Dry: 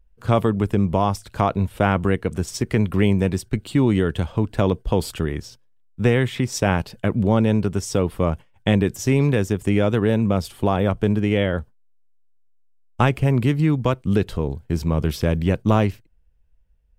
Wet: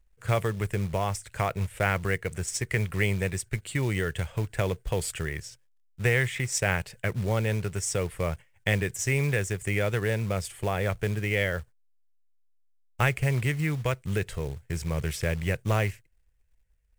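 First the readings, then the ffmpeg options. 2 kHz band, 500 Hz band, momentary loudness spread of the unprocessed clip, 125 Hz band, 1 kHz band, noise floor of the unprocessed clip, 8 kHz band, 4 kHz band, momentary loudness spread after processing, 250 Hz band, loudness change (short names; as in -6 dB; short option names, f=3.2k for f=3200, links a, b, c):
+0.5 dB, -8.0 dB, 6 LU, -6.5 dB, -8.5 dB, -56 dBFS, +1.5 dB, -4.5 dB, 6 LU, -14.0 dB, -7.5 dB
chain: -af "equalizer=f=125:t=o:w=1:g=4,equalizer=f=250:t=o:w=1:g=-12,equalizer=f=500:t=o:w=1:g=3,equalizer=f=1k:t=o:w=1:g=-5,equalizer=f=2k:t=o:w=1:g=12,equalizer=f=4k:t=o:w=1:g=-5,equalizer=f=8k:t=o:w=1:g=12,acrusher=bits=5:mode=log:mix=0:aa=0.000001,volume=-7.5dB"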